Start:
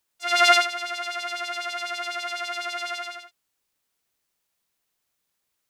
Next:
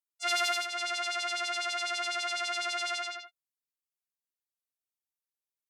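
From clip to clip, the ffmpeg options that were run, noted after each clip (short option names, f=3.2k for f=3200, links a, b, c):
-af "afftdn=nr=22:nf=-47,aemphasis=mode=production:type=cd,acompressor=threshold=-21dB:ratio=16,volume=-3dB"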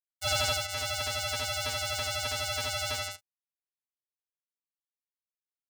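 -af "bandreject=f=60:t=h:w=6,bandreject=f=120:t=h:w=6,bandreject=f=180:t=h:w=6,bandreject=f=240:t=h:w=6,bandreject=f=300:t=h:w=6,bandreject=f=360:t=h:w=6,acrusher=bits=4:mix=0:aa=0.5,aeval=exprs='val(0)*sin(2*PI*2000*n/s)':c=same,volume=3.5dB"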